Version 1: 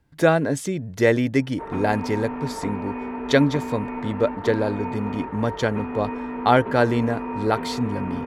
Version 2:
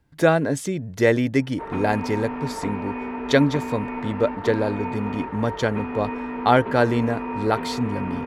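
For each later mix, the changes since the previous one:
background: add treble shelf 2.9 kHz +9 dB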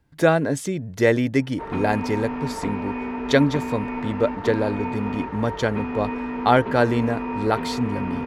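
background: add tone controls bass +4 dB, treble +10 dB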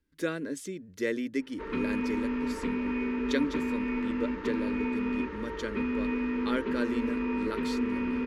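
speech -9.5 dB; master: add static phaser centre 310 Hz, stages 4

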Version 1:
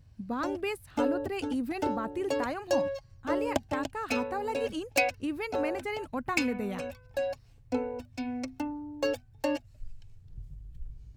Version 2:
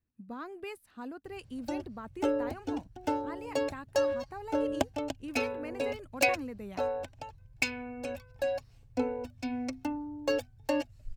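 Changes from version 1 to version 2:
speech -8.5 dB; background: entry +1.25 s

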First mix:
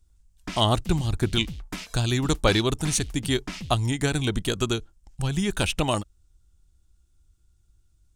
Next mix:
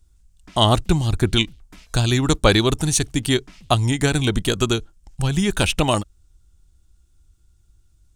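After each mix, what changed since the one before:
speech +5.5 dB; background -12.0 dB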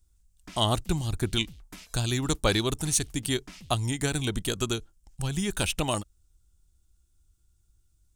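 speech -9.5 dB; master: add treble shelf 7.6 kHz +10 dB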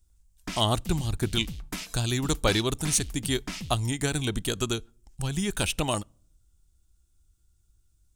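background +9.0 dB; reverb: on, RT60 0.60 s

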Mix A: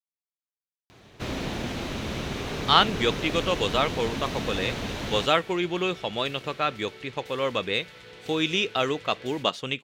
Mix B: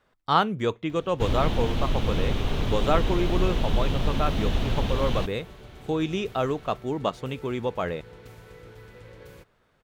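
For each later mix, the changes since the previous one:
speech: entry -2.40 s; first sound: add peaking EQ 3.2 kHz +14 dB 0.97 oct; master: remove frequency weighting D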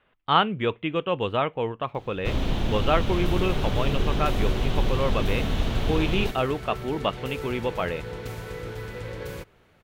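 speech: add resonant high shelf 4.1 kHz -12.5 dB, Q 3; first sound: entry +1.05 s; second sound +11.5 dB

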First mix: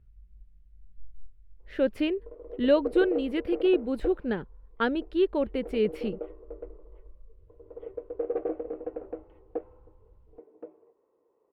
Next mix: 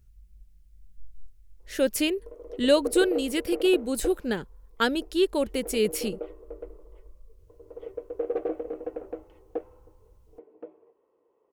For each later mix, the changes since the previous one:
master: remove distance through air 450 m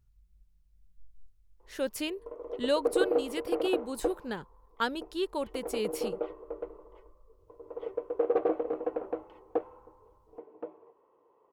speech -10.5 dB; master: add graphic EQ 125/1000/4000 Hz +5/+10/+3 dB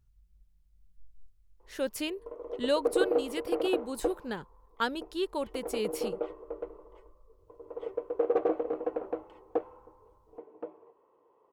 background: remove low-pass 4.9 kHz

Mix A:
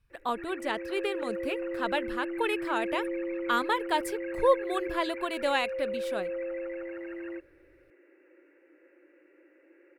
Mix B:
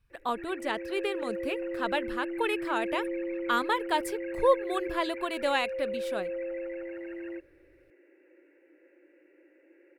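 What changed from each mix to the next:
background: add peaking EQ 1.2 kHz -9.5 dB 0.49 oct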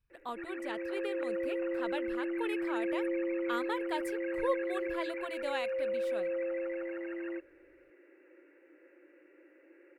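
speech -9.5 dB; background: add peaking EQ 1.2 kHz +9.5 dB 0.49 oct

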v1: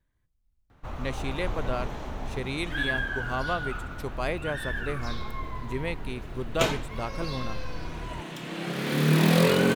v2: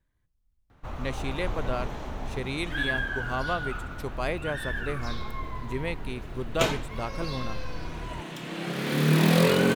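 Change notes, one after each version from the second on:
no change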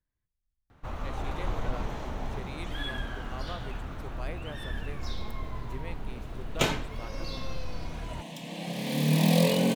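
speech -11.5 dB; second sound: add static phaser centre 370 Hz, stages 6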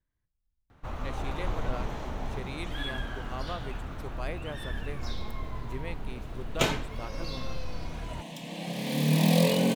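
speech +3.5 dB

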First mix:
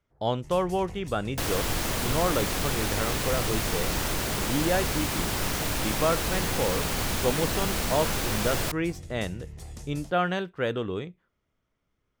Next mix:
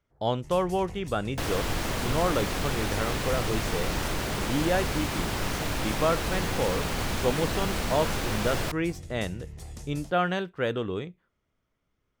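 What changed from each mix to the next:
second sound: add treble shelf 6 kHz -9 dB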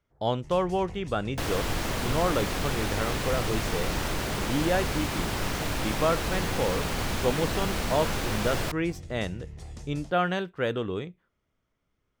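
first sound: add distance through air 52 m

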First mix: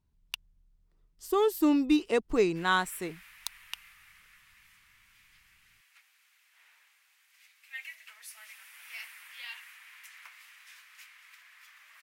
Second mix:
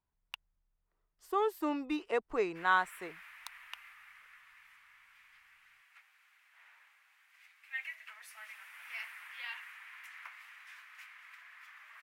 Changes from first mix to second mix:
background +5.0 dB; master: add three-band isolator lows -15 dB, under 510 Hz, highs -14 dB, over 2.3 kHz

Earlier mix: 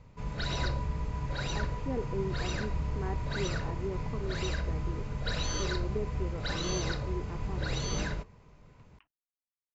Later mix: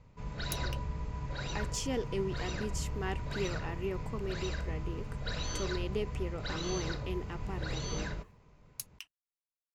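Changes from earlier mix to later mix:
speech: remove Bessel low-pass 1.1 kHz, order 4; background -4.0 dB

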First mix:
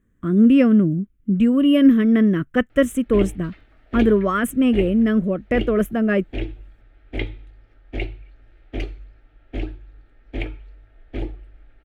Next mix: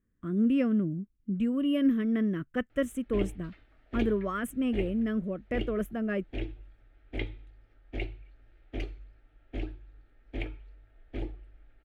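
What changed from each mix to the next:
speech -12.0 dB; background -8.0 dB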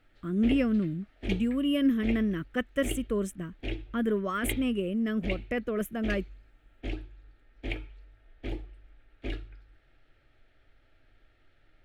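background: entry -2.70 s; master: add treble shelf 2.5 kHz +9 dB

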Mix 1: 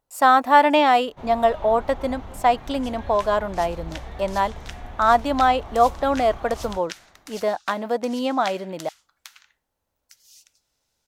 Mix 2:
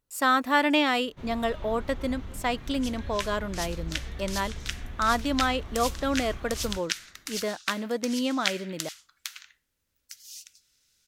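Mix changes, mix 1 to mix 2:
second sound +7.5 dB; master: add peaking EQ 770 Hz -14 dB 1.1 oct

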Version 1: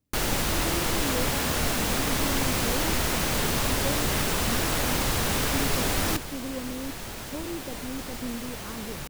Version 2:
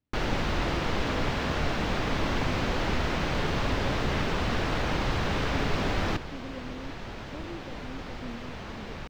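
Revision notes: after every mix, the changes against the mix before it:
speech -6.5 dB; master: add distance through air 210 m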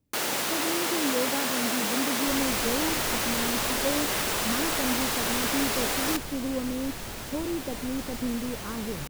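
speech +11.0 dB; first sound: add Bessel high-pass 360 Hz, order 2; master: remove distance through air 210 m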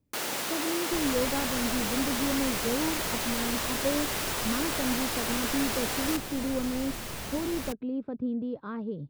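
first sound -4.0 dB; second sound: entry -1.35 s

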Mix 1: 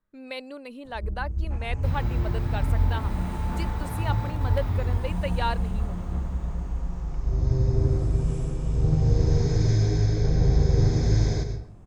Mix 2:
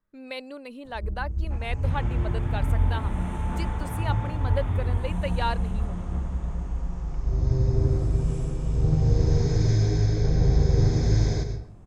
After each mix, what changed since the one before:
second sound: add brick-wall FIR low-pass 3.7 kHz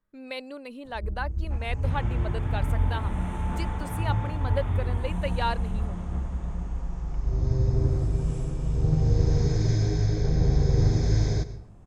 first sound: send -7.5 dB

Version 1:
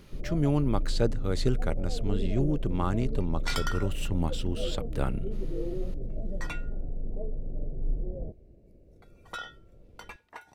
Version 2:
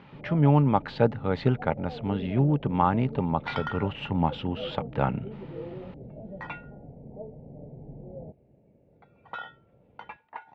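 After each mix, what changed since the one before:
speech +5.5 dB; master: add cabinet simulation 130–3000 Hz, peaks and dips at 140 Hz +4 dB, 350 Hz -7 dB, 860 Hz +10 dB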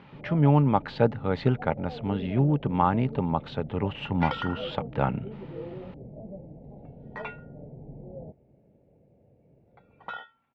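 second sound: entry +0.75 s

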